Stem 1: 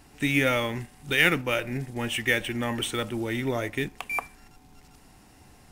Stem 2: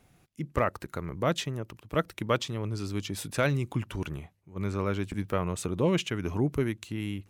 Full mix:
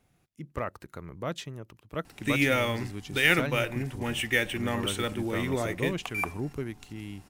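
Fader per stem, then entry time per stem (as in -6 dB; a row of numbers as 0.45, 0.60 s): -1.5, -6.5 dB; 2.05, 0.00 s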